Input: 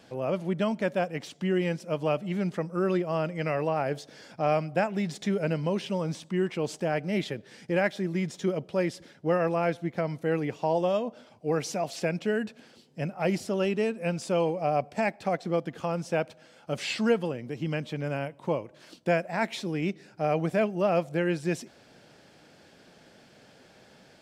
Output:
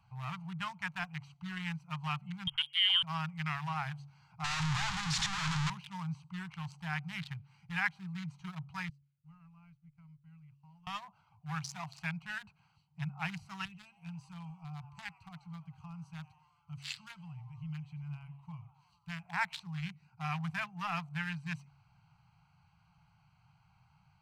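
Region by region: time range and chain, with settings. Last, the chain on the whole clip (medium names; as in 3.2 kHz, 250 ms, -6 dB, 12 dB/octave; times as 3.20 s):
2.47–3.03 s: frequency inversion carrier 3.4 kHz + distance through air 81 m
4.44–5.70 s: one-bit comparator + low-pass 6.9 kHz 24 dB/octave
8.89–10.87 s: companding laws mixed up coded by A + amplifier tone stack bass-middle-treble 6-0-2
13.65–19.23 s: peaking EQ 690 Hz -14 dB 2.9 oct + frequency-shifting echo 92 ms, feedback 63%, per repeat +140 Hz, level -17 dB
whole clip: local Wiener filter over 25 samples; inverse Chebyshev band-stop 230–600 Hz, stop band 40 dB; de-hum 140.6 Hz, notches 3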